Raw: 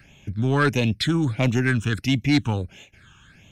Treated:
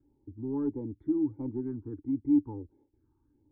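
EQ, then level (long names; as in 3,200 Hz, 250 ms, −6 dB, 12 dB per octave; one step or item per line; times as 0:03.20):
formant resonators in series u
phaser with its sweep stopped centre 680 Hz, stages 6
0.0 dB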